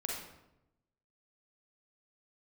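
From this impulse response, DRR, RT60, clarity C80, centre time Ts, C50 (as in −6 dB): −2.0 dB, 0.90 s, 4.5 dB, 56 ms, 0.5 dB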